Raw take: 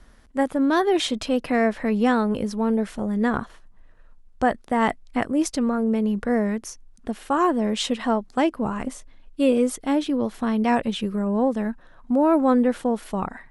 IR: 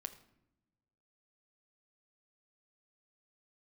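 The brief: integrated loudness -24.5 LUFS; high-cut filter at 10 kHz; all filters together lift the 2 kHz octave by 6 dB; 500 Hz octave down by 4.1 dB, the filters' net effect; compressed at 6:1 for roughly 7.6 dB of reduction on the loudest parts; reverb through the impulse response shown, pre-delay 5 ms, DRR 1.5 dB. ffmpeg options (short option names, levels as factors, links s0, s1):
-filter_complex "[0:a]lowpass=10000,equalizer=f=500:t=o:g=-5.5,equalizer=f=2000:t=o:g=7.5,acompressor=threshold=0.0631:ratio=6,asplit=2[s0][s1];[1:a]atrim=start_sample=2205,adelay=5[s2];[s1][s2]afir=irnorm=-1:irlink=0,volume=1.26[s3];[s0][s3]amix=inputs=2:normalize=0,volume=1.19"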